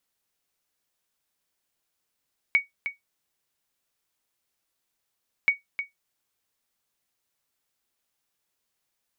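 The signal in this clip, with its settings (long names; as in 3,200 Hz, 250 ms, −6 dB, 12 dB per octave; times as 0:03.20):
ping with an echo 2,240 Hz, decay 0.15 s, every 2.93 s, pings 2, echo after 0.31 s, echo −10 dB −11.5 dBFS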